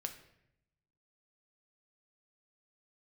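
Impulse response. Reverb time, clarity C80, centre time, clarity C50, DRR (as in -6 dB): 0.80 s, 13.5 dB, 12 ms, 10.5 dB, 5.5 dB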